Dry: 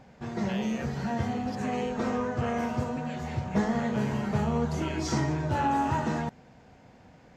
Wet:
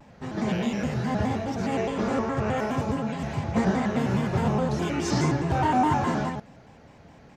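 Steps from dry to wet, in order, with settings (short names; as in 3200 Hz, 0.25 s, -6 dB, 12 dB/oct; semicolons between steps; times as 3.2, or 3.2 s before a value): on a send: echo 0.108 s -3.5 dB; on the sum: shaped vibrato square 4.8 Hz, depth 160 cents; gain +2 dB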